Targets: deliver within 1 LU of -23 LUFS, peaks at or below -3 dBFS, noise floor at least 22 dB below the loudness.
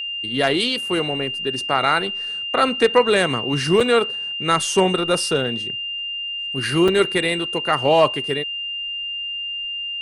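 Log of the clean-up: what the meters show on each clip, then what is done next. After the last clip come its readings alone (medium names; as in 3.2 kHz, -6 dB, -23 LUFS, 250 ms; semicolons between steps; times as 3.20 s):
dropouts 2; longest dropout 4.4 ms; steady tone 2.8 kHz; tone level -25 dBFS; loudness -20.0 LUFS; peak level -2.5 dBFS; loudness target -23.0 LUFS
-> interpolate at 3.80/6.88 s, 4.4 ms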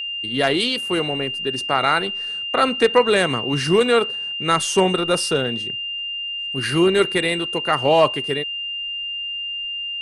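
dropouts 0; steady tone 2.8 kHz; tone level -25 dBFS
-> band-stop 2.8 kHz, Q 30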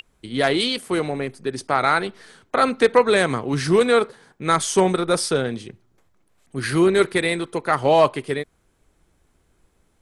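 steady tone not found; loudness -20.5 LUFS; peak level -2.0 dBFS; loudness target -23.0 LUFS
-> trim -2.5 dB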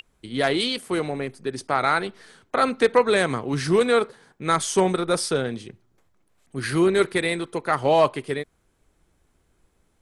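loudness -23.0 LUFS; peak level -4.5 dBFS; noise floor -67 dBFS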